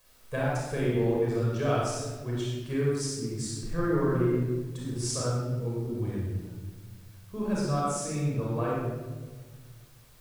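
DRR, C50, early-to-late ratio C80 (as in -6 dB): -6.0 dB, -2.5 dB, 0.5 dB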